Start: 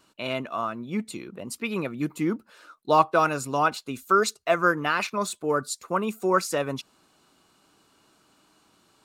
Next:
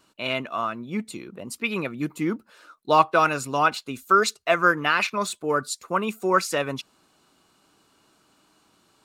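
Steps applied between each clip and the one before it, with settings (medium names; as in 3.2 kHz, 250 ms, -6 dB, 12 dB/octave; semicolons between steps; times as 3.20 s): dynamic bell 2.5 kHz, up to +6 dB, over -39 dBFS, Q 0.73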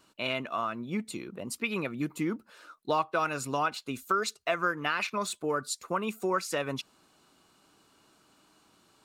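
compression 2.5:1, threshold -27 dBFS, peak gain reduction 11 dB; trim -1.5 dB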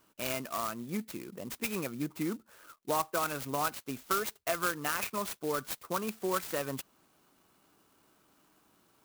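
sampling jitter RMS 0.065 ms; trim -3 dB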